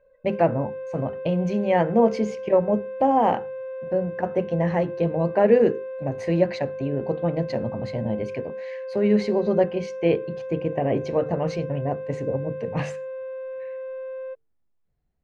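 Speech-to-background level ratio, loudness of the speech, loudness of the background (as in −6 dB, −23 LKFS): 9.5 dB, −24.5 LKFS, −34.0 LKFS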